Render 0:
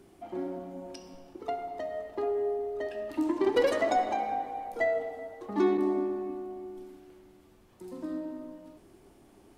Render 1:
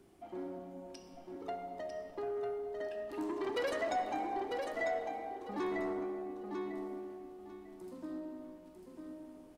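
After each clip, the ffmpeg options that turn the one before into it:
-filter_complex "[0:a]aecho=1:1:948|1896|2844:0.501|0.11|0.0243,acrossover=split=820[a][b];[a]asoftclip=type=tanh:threshold=-28dB[c];[c][b]amix=inputs=2:normalize=0,volume=-6dB"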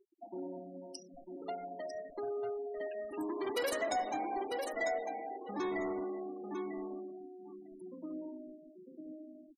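-af "crystalizer=i=1:c=0,highshelf=f=6.9k:g=11.5,afftfilt=real='re*gte(hypot(re,im),0.00708)':imag='im*gte(hypot(re,im),0.00708)':win_size=1024:overlap=0.75"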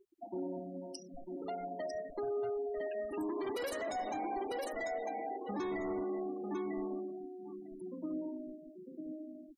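-af "lowshelf=f=160:g=8.5,alimiter=level_in=8.5dB:limit=-24dB:level=0:latency=1:release=110,volume=-8.5dB,volume=2dB"

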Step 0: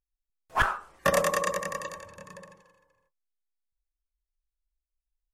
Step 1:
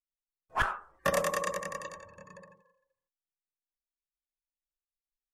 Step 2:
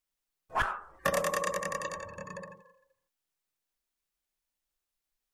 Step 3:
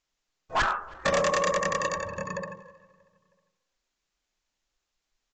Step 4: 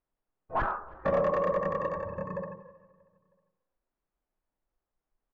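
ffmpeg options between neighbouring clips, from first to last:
-af "afftdn=nr=17:nf=-55,volume=-4.5dB"
-af "acompressor=threshold=-42dB:ratio=2,volume=8.5dB"
-filter_complex "[0:a]aresample=16000,asoftclip=type=hard:threshold=-29dB,aresample=44100,asplit=2[a][b];[b]adelay=317,lowpass=f=3.1k:p=1,volume=-23dB,asplit=2[c][d];[d]adelay=317,lowpass=f=3.1k:p=1,volume=0.51,asplit=2[e][f];[f]adelay=317,lowpass=f=3.1k:p=1,volume=0.51[g];[a][c][e][g]amix=inputs=4:normalize=0,volume=8.5dB"
-af "lowpass=1k"

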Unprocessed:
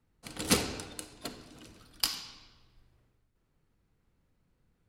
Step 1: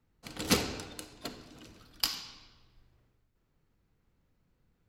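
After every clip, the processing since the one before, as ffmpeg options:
-af "equalizer=f=9.4k:t=o:w=0.25:g=-11.5"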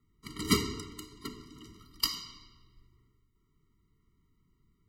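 -af "afftfilt=real='re*eq(mod(floor(b*sr/1024/460),2),0)':imag='im*eq(mod(floor(b*sr/1024/460),2),0)':win_size=1024:overlap=0.75,volume=2.5dB"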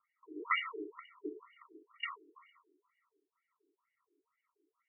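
-af "afftfilt=real='re*between(b*sr/1024,370*pow(2100/370,0.5+0.5*sin(2*PI*2.1*pts/sr))/1.41,370*pow(2100/370,0.5+0.5*sin(2*PI*2.1*pts/sr))*1.41)':imag='im*between(b*sr/1024,370*pow(2100/370,0.5+0.5*sin(2*PI*2.1*pts/sr))/1.41,370*pow(2100/370,0.5+0.5*sin(2*PI*2.1*pts/sr))*1.41)':win_size=1024:overlap=0.75,volume=6dB"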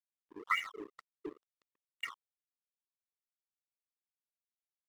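-af "aeval=exprs='sgn(val(0))*max(abs(val(0))-0.00422,0)':c=same,volume=1dB"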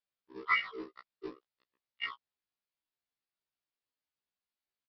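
-af "aresample=11025,acrusher=bits=5:mode=log:mix=0:aa=0.000001,aresample=44100,afftfilt=real='re*1.73*eq(mod(b,3),0)':imag='im*1.73*eq(mod(b,3),0)':win_size=2048:overlap=0.75,volume=6dB"

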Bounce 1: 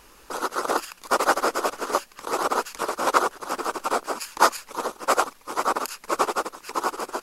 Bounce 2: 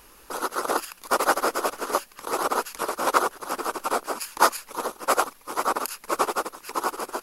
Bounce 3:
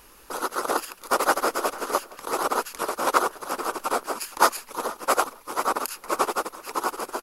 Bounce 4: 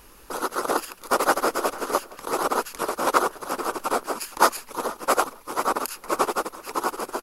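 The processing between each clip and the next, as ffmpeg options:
-af "aexciter=amount=1.9:drive=5.4:freq=10k,volume=-1dB"
-filter_complex "[0:a]asplit=2[a][b];[b]adelay=467,lowpass=f=3.3k:p=1,volume=-19dB,asplit=2[c][d];[d]adelay=467,lowpass=f=3.3k:p=1,volume=0.18[e];[a][c][e]amix=inputs=3:normalize=0"
-af "lowshelf=f=340:g=5.5"

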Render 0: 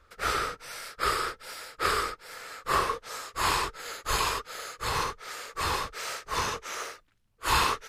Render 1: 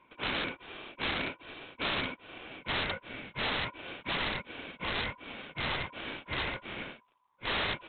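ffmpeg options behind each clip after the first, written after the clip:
-af "aeval=exprs='val(0)*sin(2*PI*1000*n/s)':c=same,aresample=8000,aeval=exprs='(mod(17.8*val(0)+1,2)-1)/17.8':c=same,aresample=44100"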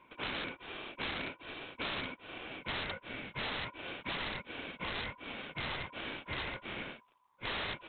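-af "acompressor=threshold=-40dB:ratio=2.5,volume=1.5dB"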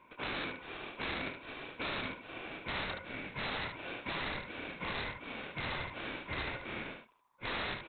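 -af "equalizer=f=3.1k:t=o:w=0.26:g=-6,aecho=1:1:27|74:0.299|0.501"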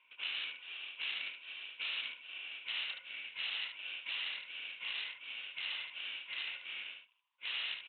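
-af "bandpass=f=2.9k:t=q:w=7.7:csg=0,volume=10dB"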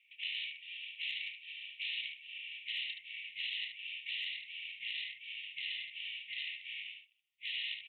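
-filter_complex "[0:a]afftfilt=real='re*(1-between(b*sr/4096,190,1800))':imag='im*(1-between(b*sr/4096,190,1800))':win_size=4096:overlap=0.75,acrossover=split=1100[a][b];[a]aeval=exprs='(mod(891*val(0)+1,2)-1)/891':c=same[c];[c][b]amix=inputs=2:normalize=0"

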